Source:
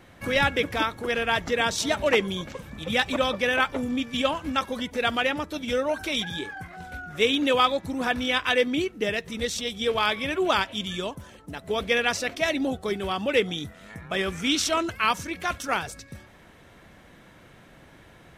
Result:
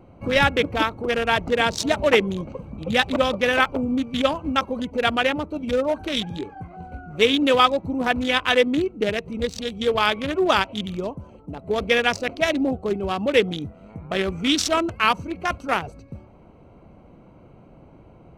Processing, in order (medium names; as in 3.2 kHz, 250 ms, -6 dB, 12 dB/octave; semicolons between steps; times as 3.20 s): local Wiener filter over 25 samples; trim +5 dB